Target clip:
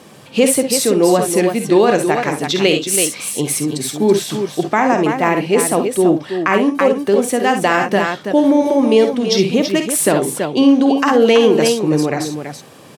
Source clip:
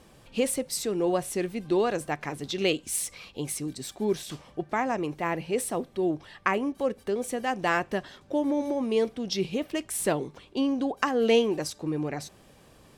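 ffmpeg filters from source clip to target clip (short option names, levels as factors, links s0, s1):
-filter_complex "[0:a]highpass=f=120:w=0.5412,highpass=f=120:w=1.3066,asplit=2[s0][s1];[s1]aecho=0:1:50|65|329:0.335|0.299|0.398[s2];[s0][s2]amix=inputs=2:normalize=0,alimiter=level_in=5.31:limit=0.891:release=50:level=0:latency=1,volume=0.891"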